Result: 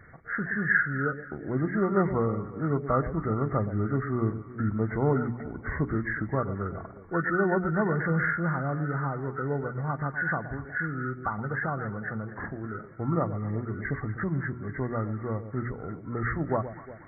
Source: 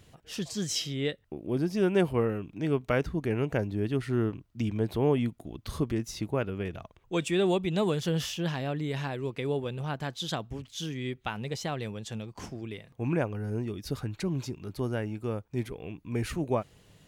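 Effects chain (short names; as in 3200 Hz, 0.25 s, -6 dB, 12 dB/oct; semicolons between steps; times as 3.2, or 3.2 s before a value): nonlinear frequency compression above 1100 Hz 4:1; notches 60/120/180/240/300/360/420 Hz; on a send: echo with dull and thin repeats by turns 0.12 s, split 850 Hz, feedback 61%, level -11.5 dB; on the sum: dynamic EQ 410 Hz, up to -5 dB, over -40 dBFS, Q 0.86; gain +4 dB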